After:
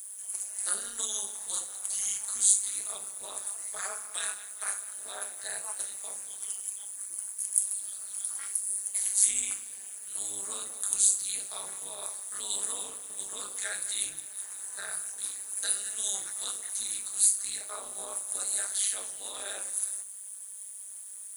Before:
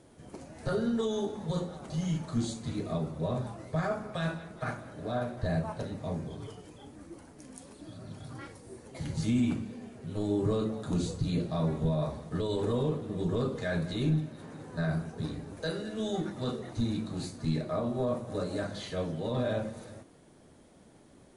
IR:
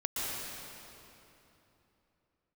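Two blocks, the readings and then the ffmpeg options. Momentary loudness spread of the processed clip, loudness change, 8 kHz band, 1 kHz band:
13 LU, +3.0 dB, +25.0 dB, −6.0 dB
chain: -af "highpass=1300,aemphasis=mode=production:type=75kf,tremolo=f=200:d=0.919,aexciter=amount=6.7:drive=7.3:freq=7300,volume=3dB"

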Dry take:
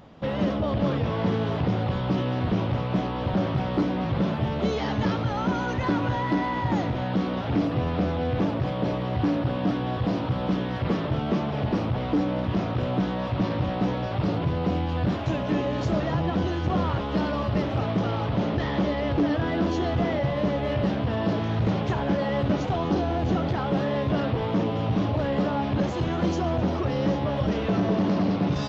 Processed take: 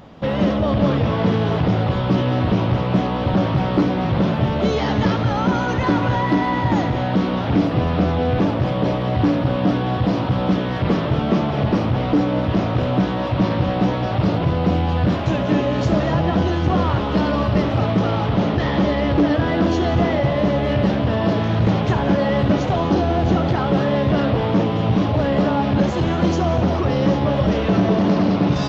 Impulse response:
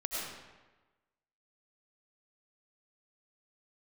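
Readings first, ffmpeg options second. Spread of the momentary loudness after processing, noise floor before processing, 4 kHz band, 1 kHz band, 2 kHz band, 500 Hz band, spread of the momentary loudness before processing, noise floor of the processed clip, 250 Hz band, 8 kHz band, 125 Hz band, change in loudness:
2 LU, −29 dBFS, +7.0 dB, +7.0 dB, +7.0 dB, +7.0 dB, 2 LU, −22 dBFS, +7.0 dB, can't be measured, +7.0 dB, +7.0 dB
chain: -filter_complex "[0:a]asplit=2[link_01][link_02];[1:a]atrim=start_sample=2205,adelay=71[link_03];[link_02][link_03]afir=irnorm=-1:irlink=0,volume=-14dB[link_04];[link_01][link_04]amix=inputs=2:normalize=0,volume=6.5dB"

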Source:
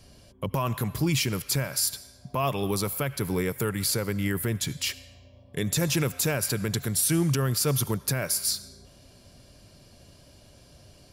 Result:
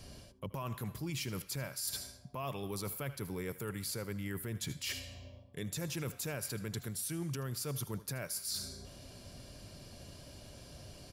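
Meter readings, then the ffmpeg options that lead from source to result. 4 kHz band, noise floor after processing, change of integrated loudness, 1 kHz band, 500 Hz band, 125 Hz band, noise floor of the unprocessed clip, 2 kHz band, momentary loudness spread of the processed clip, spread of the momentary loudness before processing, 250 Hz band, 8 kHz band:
−11.5 dB, −56 dBFS, −12.5 dB, −13.0 dB, −12.5 dB, −12.5 dB, −55 dBFS, −12.0 dB, 14 LU, 7 LU, −13.0 dB, −12.5 dB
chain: -af "aecho=1:1:79:0.112,areverse,acompressor=threshold=-39dB:ratio=6,areverse,volume=1.5dB"

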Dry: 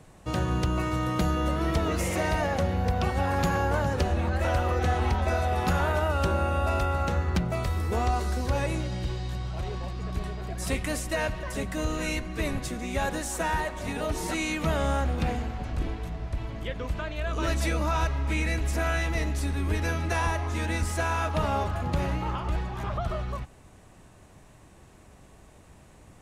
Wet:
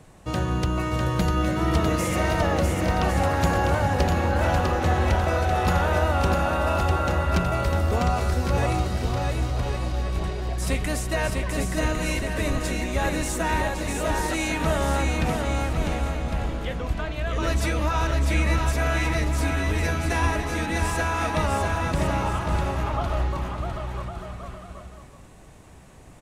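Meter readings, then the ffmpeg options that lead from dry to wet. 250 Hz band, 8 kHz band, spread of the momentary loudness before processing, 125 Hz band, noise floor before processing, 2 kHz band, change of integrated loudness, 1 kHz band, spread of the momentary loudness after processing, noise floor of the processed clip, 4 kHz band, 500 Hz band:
+4.0 dB, +4.0 dB, 8 LU, +4.0 dB, −53 dBFS, +4.0 dB, +4.0 dB, +4.0 dB, 6 LU, −45 dBFS, +4.0 dB, +4.0 dB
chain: -af "aecho=1:1:650|1105|1424|1646|1803:0.631|0.398|0.251|0.158|0.1,volume=2dB"

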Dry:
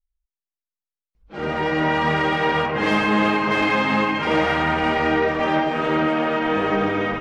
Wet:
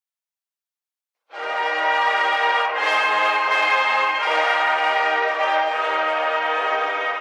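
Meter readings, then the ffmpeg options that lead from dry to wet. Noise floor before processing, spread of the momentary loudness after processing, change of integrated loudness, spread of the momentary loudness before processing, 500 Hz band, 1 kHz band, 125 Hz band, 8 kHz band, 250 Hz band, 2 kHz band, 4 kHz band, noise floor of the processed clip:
below −85 dBFS, 4 LU, +1.0 dB, 3 LU, −3.0 dB, +3.0 dB, below −40 dB, can't be measured, −21.0 dB, +3.0 dB, +3.0 dB, below −85 dBFS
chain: -af "highpass=frequency=600:width=0.5412,highpass=frequency=600:width=1.3066,volume=3dB"

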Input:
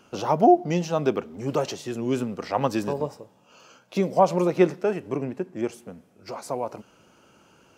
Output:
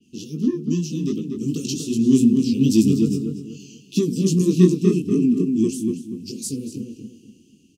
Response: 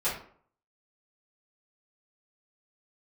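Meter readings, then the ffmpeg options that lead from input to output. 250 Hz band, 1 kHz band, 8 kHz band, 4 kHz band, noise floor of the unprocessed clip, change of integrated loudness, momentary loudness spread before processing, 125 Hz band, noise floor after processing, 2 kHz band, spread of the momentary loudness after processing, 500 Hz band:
+9.5 dB, below −25 dB, +11.0 dB, +6.0 dB, −59 dBFS, +4.5 dB, 12 LU, +9.5 dB, −55 dBFS, can't be measured, 17 LU, −2.0 dB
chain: -filter_complex "[0:a]asuperstop=centerf=1100:order=20:qfactor=0.51,acrossover=split=310|3300[link_01][link_02][link_03];[link_02]asoftclip=type=tanh:threshold=-25dB[link_04];[link_01][link_04][link_03]amix=inputs=3:normalize=0,flanger=delay=18:depth=4.7:speed=2.5,equalizer=frequency=250:width_type=o:width=1:gain=12,equalizer=frequency=500:width_type=o:width=1:gain=-10,equalizer=frequency=1000:width_type=o:width=1:gain=-9,equalizer=frequency=8000:width_type=o:width=1:gain=5,dynaudnorm=framelen=320:gausssize=9:maxgain=11.5dB,asplit=2[link_05][link_06];[link_06]adelay=241,lowpass=frequency=2300:poles=1,volume=-4.5dB,asplit=2[link_07][link_08];[link_08]adelay=241,lowpass=frequency=2300:poles=1,volume=0.3,asplit=2[link_09][link_10];[link_10]adelay=241,lowpass=frequency=2300:poles=1,volume=0.3,asplit=2[link_11][link_12];[link_12]adelay=241,lowpass=frequency=2300:poles=1,volume=0.3[link_13];[link_07][link_09][link_11][link_13]amix=inputs=4:normalize=0[link_14];[link_05][link_14]amix=inputs=2:normalize=0,adynamicequalizer=threshold=0.00501:dfrequency=4400:dqfactor=0.7:tfrequency=4400:tqfactor=0.7:attack=5:release=100:ratio=0.375:range=2.5:mode=boostabove:tftype=highshelf,volume=-1dB"

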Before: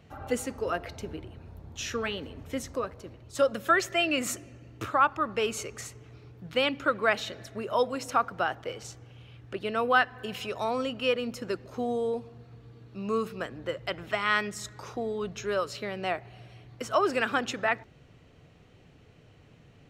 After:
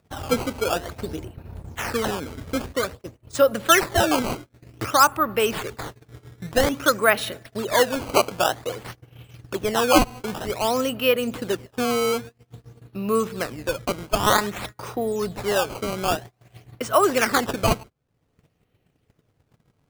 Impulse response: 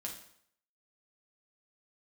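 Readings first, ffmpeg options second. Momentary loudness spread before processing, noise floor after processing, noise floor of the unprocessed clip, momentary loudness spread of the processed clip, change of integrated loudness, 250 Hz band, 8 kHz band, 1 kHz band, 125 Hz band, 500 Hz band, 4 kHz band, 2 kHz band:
16 LU, −70 dBFS, −57 dBFS, 16 LU, +7.0 dB, +8.0 dB, +11.0 dB, +6.5 dB, +9.5 dB, +7.0 dB, +7.5 dB, +4.0 dB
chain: -af "acrusher=samples=14:mix=1:aa=0.000001:lfo=1:lforange=22.4:lforate=0.52,acompressor=mode=upward:threshold=-35dB:ratio=2.5,agate=range=-30dB:threshold=-41dB:ratio=16:detection=peak,volume=7dB"

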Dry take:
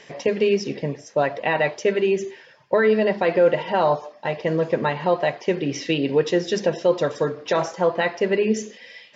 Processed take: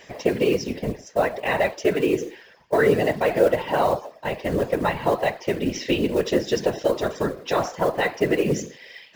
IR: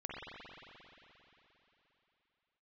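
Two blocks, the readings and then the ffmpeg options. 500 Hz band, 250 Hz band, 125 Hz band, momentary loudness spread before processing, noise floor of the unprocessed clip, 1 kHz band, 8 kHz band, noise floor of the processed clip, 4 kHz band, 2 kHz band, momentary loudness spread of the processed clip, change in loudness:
−1.5 dB, 0.0 dB, 0.0 dB, 7 LU, −49 dBFS, −0.5 dB, can't be measured, −50 dBFS, −0.5 dB, −1.0 dB, 8 LU, −1.0 dB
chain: -af "acrusher=bits=6:mode=log:mix=0:aa=0.000001,acontrast=37,afftfilt=real='hypot(re,im)*cos(2*PI*random(0))':imag='hypot(re,im)*sin(2*PI*random(1))':win_size=512:overlap=0.75"

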